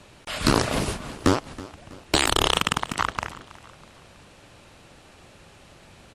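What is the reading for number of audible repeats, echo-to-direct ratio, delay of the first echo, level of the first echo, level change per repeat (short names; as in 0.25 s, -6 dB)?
3, -18.0 dB, 0.324 s, -19.0 dB, -7.5 dB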